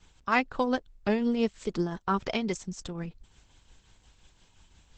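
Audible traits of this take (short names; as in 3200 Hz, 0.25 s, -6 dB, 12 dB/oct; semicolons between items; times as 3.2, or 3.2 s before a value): tremolo triangle 5.7 Hz, depth 55%; Opus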